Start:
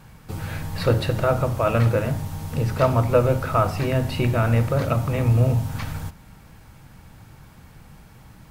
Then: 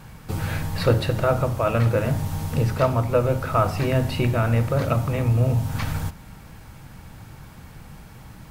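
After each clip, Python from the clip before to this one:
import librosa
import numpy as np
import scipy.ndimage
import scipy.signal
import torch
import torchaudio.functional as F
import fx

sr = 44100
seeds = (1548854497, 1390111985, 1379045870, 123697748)

y = fx.rider(x, sr, range_db=4, speed_s=0.5)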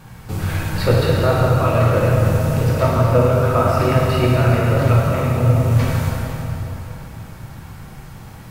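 y = fx.rev_plate(x, sr, seeds[0], rt60_s=3.6, hf_ratio=0.75, predelay_ms=0, drr_db=-4.5)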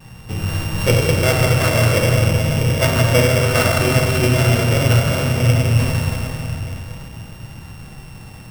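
y = np.r_[np.sort(x[:len(x) // 16 * 16].reshape(-1, 16), axis=1).ravel(), x[len(x) // 16 * 16:]]
y = fx.vibrato(y, sr, rate_hz=0.45, depth_cents=13.0)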